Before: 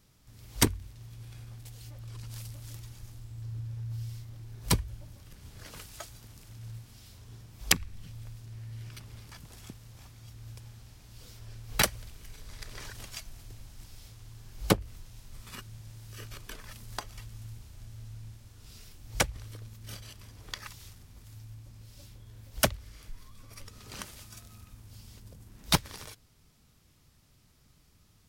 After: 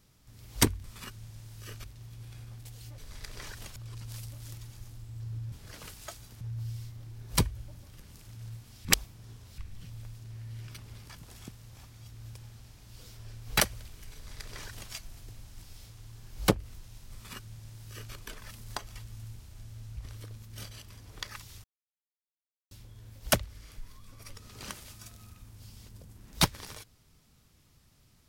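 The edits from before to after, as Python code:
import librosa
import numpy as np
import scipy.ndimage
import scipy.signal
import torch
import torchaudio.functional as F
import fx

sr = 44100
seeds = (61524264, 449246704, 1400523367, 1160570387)

y = fx.edit(x, sr, fx.move(start_s=5.44, length_s=0.89, to_s=3.74),
    fx.reverse_span(start_s=7.07, length_s=0.73),
    fx.duplicate(start_s=12.36, length_s=0.78, to_s=1.98),
    fx.duplicate(start_s=15.35, length_s=1.0, to_s=0.84),
    fx.cut(start_s=18.19, length_s=1.09),
    fx.silence(start_s=20.95, length_s=1.07), tone=tone)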